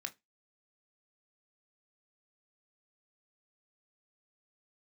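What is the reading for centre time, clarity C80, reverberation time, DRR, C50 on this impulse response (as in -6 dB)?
5 ms, 32.5 dB, not exponential, 6.5 dB, 22.5 dB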